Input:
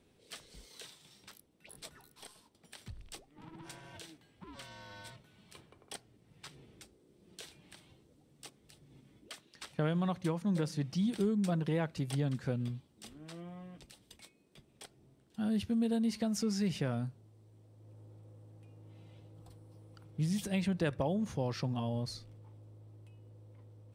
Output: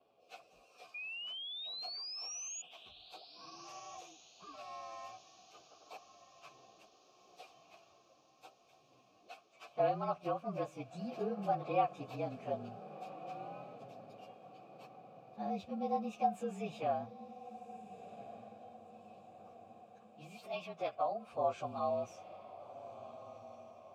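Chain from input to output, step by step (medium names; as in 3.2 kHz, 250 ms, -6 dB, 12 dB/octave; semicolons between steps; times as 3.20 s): frequency axis rescaled in octaves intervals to 111%; vowel filter a; 0.94–2.62 s: painted sound rise 2.4–6.9 kHz -59 dBFS; 19.82–21.33 s: bass shelf 480 Hz -12 dB; on a send: echo that smears into a reverb 1439 ms, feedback 50%, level -14 dB; on the sum: trim +15 dB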